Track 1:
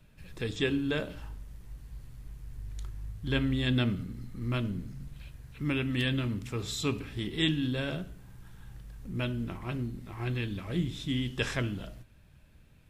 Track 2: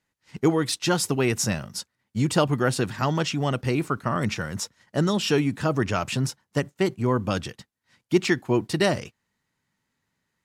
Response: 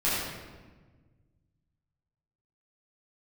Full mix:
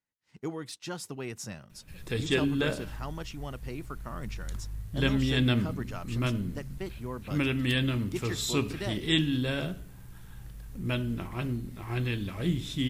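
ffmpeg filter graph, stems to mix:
-filter_complex "[0:a]highshelf=f=9k:g=8,adelay=1700,volume=2dB[a];[1:a]volume=-15dB[b];[a][b]amix=inputs=2:normalize=0"

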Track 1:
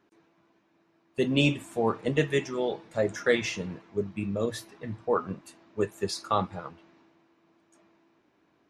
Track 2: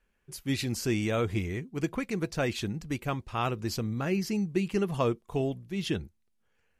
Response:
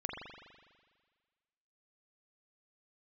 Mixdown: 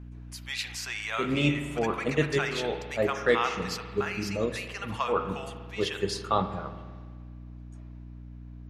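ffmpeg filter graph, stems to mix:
-filter_complex "[0:a]aeval=exprs='val(0)+0.00794*(sin(2*PI*60*n/s)+sin(2*PI*2*60*n/s)/2+sin(2*PI*3*60*n/s)/3+sin(2*PI*4*60*n/s)/4+sin(2*PI*5*60*n/s)/5)':c=same,volume=-2dB,asplit=2[a][b];[b]volume=-8dB[c];[1:a]highpass=f=890:w=0.5412,highpass=f=890:w=1.3066,highshelf=f=8.5k:g=-9.5,volume=1dB,asplit=3[d][e][f];[e]volume=-4dB[g];[f]apad=whole_len=383382[h];[a][h]sidechaincompress=threshold=-42dB:ratio=8:attack=6.4:release=113[i];[2:a]atrim=start_sample=2205[j];[c][g]amix=inputs=2:normalize=0[k];[k][j]afir=irnorm=-1:irlink=0[l];[i][d][l]amix=inputs=3:normalize=0,highshelf=f=9k:g=-4.5"

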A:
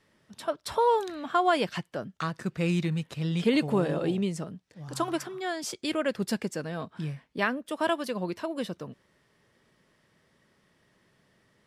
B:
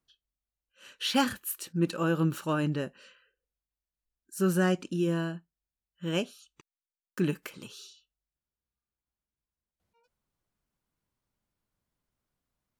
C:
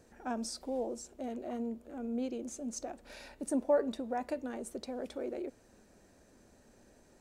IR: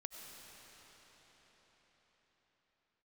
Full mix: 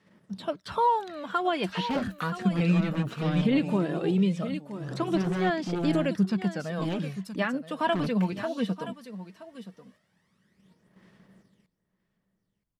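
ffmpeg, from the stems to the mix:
-filter_complex "[0:a]equalizer=f=190:t=o:w=0.27:g=12,aphaser=in_gain=1:out_gain=1:delay=4.5:decay=0.56:speed=0.18:type=sinusoidal,highpass=89,volume=-0.5dB,asplit=2[a][b];[b]volume=-14.5dB[c];[1:a]acrossover=split=8300[d][e];[e]acompressor=threshold=-51dB:ratio=4:attack=1:release=60[f];[d][f]amix=inputs=2:normalize=0,lowshelf=f=320:g=10.5,aeval=exprs='0.224*(cos(1*acos(clip(val(0)/0.224,-1,1)))-cos(1*PI/2))+0.0708*(cos(5*acos(clip(val(0)/0.224,-1,1)))-cos(5*PI/2))':c=same,adelay=750,volume=-11dB[g];[a][g]amix=inputs=2:normalize=0,acrossover=split=4400[h][i];[i]acompressor=threshold=-57dB:ratio=4:attack=1:release=60[j];[h][j]amix=inputs=2:normalize=0,alimiter=limit=-15.5dB:level=0:latency=1:release=295,volume=0dB[k];[c]aecho=0:1:973:1[l];[k][l]amix=inputs=2:normalize=0,agate=range=-6dB:threshold=-58dB:ratio=16:detection=peak"

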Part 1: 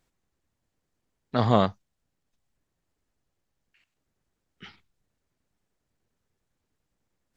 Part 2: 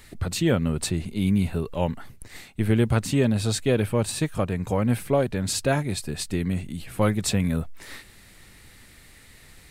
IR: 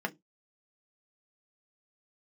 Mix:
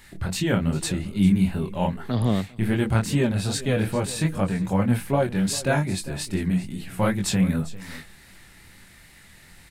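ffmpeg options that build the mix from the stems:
-filter_complex "[0:a]lowpass=3.8k,acrossover=split=380|3000[a][b][c];[b]acompressor=threshold=-43dB:ratio=2.5[d];[a][d][c]amix=inputs=3:normalize=0,adelay=750,volume=2dB,asplit=2[e][f];[f]volume=-23.5dB[g];[1:a]flanger=delay=20:depth=7.3:speed=2.5,volume=2dB,asplit=3[h][i][j];[i]volume=-13dB[k];[j]volume=-16.5dB[l];[2:a]atrim=start_sample=2205[m];[k][m]afir=irnorm=-1:irlink=0[n];[g][l]amix=inputs=2:normalize=0,aecho=0:1:398:1[o];[e][h][n][o]amix=inputs=4:normalize=0"

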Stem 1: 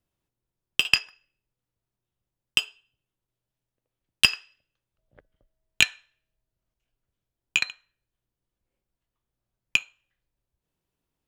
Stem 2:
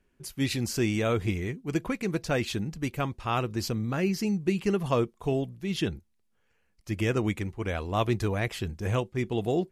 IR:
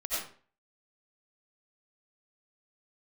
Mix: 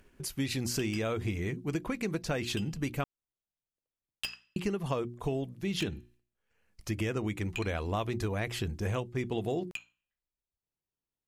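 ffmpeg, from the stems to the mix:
-filter_complex "[0:a]bandreject=f=60:t=h:w=6,bandreject=f=120:t=h:w=6,bandreject=f=180:t=h:w=6,bandreject=f=240:t=h:w=6,bandreject=f=300:t=h:w=6,asoftclip=type=tanh:threshold=-13dB,volume=-13dB[a];[1:a]agate=range=-33dB:threshold=-55dB:ratio=3:detection=peak,bandreject=f=60:t=h:w=6,bandreject=f=120:t=h:w=6,bandreject=f=180:t=h:w=6,bandreject=f=240:t=h:w=6,bandreject=f=300:t=h:w=6,bandreject=f=360:t=h:w=6,acompressor=mode=upward:threshold=-40dB:ratio=2.5,volume=2.5dB,asplit=3[b][c][d];[b]atrim=end=3.04,asetpts=PTS-STARTPTS,afade=t=out:st=3.036:d=0.004:c=hsin[e];[c]atrim=start=3.04:end=4.56,asetpts=PTS-STARTPTS,volume=0[f];[d]atrim=start=4.56,asetpts=PTS-STARTPTS,afade=t=in:d=0.004:c=hsin[g];[e][f][g]concat=n=3:v=0:a=1[h];[a][h]amix=inputs=2:normalize=0,acompressor=threshold=-29dB:ratio=6"

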